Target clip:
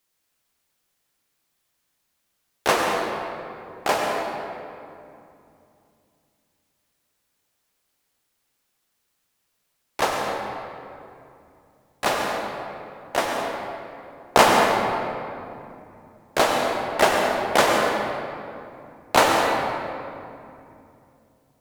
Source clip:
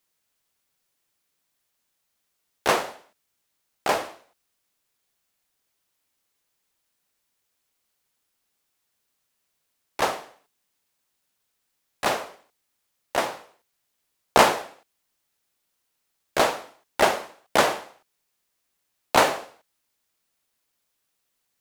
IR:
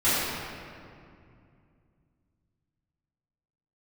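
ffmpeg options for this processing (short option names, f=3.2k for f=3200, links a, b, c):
-filter_complex "[0:a]asplit=2[a][b];[1:a]atrim=start_sample=2205,asetrate=38808,aresample=44100,adelay=90[c];[b][c]afir=irnorm=-1:irlink=0,volume=-18dB[d];[a][d]amix=inputs=2:normalize=0,volume=1dB"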